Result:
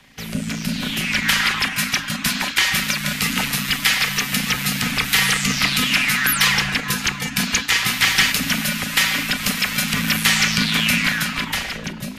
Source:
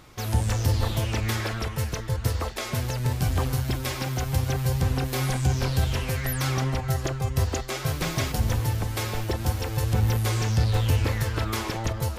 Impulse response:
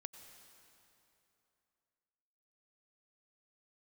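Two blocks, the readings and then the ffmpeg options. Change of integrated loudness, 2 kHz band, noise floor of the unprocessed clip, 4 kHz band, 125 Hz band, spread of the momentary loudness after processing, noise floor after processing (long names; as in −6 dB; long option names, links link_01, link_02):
+8.5 dB, +17.0 dB, −34 dBFS, +16.5 dB, −6.5 dB, 7 LU, −31 dBFS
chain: -filter_complex "[0:a]equalizer=frequency=2600:width=1.1:gain=8.5,acrossover=split=1400[link_01][link_02];[link_01]aeval=exprs='val(0)*sin(2*PI*28*n/s)':channel_layout=same[link_03];[link_02]dynaudnorm=framelen=170:gausssize=13:maxgain=16.5dB[link_04];[link_03][link_04]amix=inputs=2:normalize=0,afreqshift=-300"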